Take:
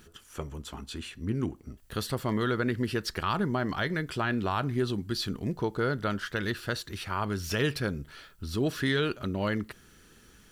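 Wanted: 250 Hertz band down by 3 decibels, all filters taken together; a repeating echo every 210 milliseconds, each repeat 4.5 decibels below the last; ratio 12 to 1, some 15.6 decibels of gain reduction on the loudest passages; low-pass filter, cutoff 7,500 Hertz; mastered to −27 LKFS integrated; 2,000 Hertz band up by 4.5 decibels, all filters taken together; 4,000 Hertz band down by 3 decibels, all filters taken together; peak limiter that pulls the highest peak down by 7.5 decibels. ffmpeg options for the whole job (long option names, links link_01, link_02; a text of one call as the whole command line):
ffmpeg -i in.wav -af "lowpass=7500,equalizer=frequency=250:width_type=o:gain=-4,equalizer=frequency=2000:width_type=o:gain=7,equalizer=frequency=4000:width_type=o:gain=-6,acompressor=threshold=-39dB:ratio=12,alimiter=level_in=9.5dB:limit=-24dB:level=0:latency=1,volume=-9.5dB,aecho=1:1:210|420|630|840|1050|1260|1470|1680|1890:0.596|0.357|0.214|0.129|0.0772|0.0463|0.0278|0.0167|0.01,volume=16dB" out.wav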